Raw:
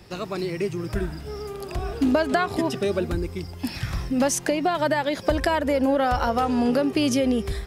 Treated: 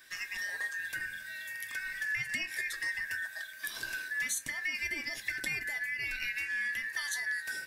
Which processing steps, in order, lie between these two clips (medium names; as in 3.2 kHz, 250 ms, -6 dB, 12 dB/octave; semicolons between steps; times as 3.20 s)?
four frequency bands reordered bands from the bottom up 2143; pre-emphasis filter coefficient 0.8; compression 3:1, threshold -34 dBFS, peak gain reduction 8.5 dB; reverberation RT60 0.25 s, pre-delay 3 ms, DRR 6 dB